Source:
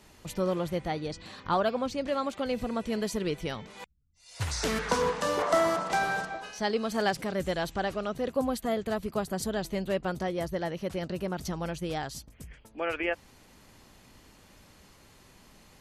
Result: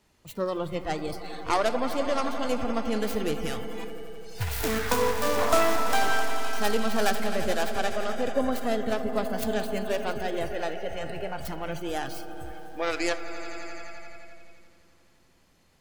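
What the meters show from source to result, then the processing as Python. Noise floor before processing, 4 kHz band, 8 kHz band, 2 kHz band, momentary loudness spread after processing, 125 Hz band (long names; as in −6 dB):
−57 dBFS, +3.0 dB, +3.0 dB, +3.0 dB, 14 LU, −1.0 dB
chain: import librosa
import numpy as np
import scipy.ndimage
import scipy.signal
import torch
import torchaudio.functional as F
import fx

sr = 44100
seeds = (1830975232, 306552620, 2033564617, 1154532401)

y = fx.tracing_dist(x, sr, depth_ms=0.44)
y = fx.echo_swell(y, sr, ms=86, loudest=5, wet_db=-14.0)
y = fx.rev_freeverb(y, sr, rt60_s=0.67, hf_ratio=0.3, predelay_ms=40, drr_db=16.5)
y = fx.noise_reduce_blind(y, sr, reduce_db=12)
y = y * 10.0 ** (2.0 / 20.0)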